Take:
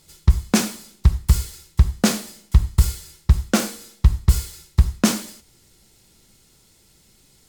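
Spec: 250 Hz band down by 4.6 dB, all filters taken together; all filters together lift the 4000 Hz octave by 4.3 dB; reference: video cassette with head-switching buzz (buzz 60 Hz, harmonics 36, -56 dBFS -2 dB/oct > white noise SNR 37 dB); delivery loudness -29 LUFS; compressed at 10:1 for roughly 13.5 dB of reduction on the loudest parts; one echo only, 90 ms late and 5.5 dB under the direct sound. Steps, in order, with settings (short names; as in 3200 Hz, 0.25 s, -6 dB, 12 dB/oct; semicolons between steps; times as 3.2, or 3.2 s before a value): bell 250 Hz -6 dB; bell 4000 Hz +5.5 dB; compressor 10:1, threshold -22 dBFS; echo 90 ms -5.5 dB; buzz 60 Hz, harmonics 36, -56 dBFS -2 dB/oct; white noise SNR 37 dB; gain +0.5 dB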